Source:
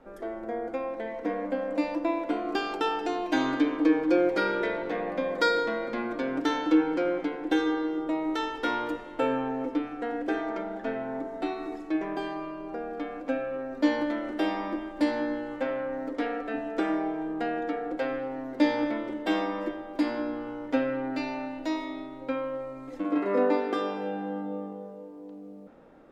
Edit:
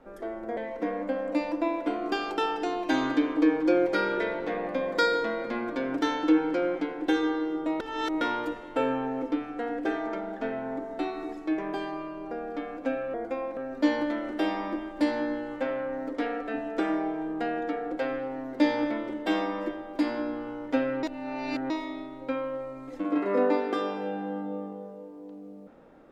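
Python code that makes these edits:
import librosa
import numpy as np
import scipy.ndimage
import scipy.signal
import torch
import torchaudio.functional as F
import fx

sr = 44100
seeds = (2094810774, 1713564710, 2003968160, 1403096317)

y = fx.edit(x, sr, fx.move(start_s=0.57, length_s=0.43, to_s=13.57),
    fx.reverse_span(start_s=8.23, length_s=0.41),
    fx.reverse_span(start_s=21.03, length_s=0.67), tone=tone)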